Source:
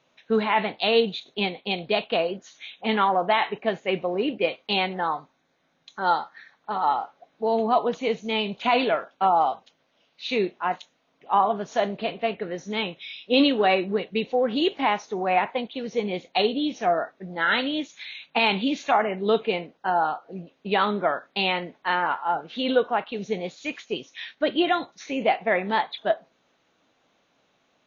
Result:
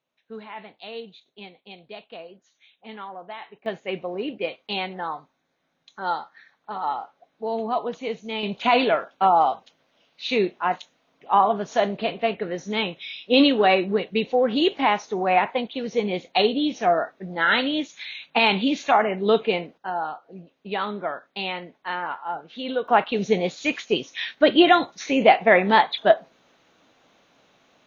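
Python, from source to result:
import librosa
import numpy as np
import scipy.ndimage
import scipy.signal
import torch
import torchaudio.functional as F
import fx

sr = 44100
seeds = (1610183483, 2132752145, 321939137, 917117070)

y = fx.gain(x, sr, db=fx.steps((0.0, -16.0), (3.66, -4.0), (8.43, 2.5), (19.78, -5.0), (22.88, 7.0)))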